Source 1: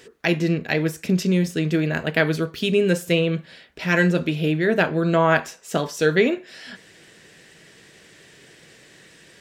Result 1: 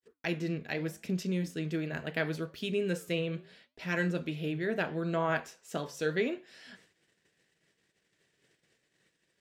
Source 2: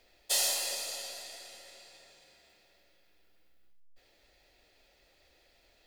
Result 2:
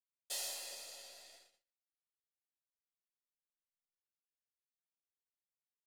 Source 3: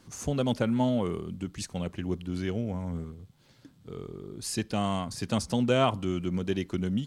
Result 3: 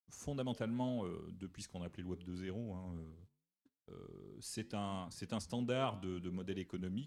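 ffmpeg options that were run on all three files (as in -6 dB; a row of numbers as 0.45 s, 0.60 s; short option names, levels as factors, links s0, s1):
-af "agate=range=0.00501:threshold=0.00447:ratio=16:detection=peak,flanger=delay=3.1:depth=7.9:regen=-89:speed=0.76:shape=triangular,volume=0.398"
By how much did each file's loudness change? -12.5 LU, -11.5 LU, -12.5 LU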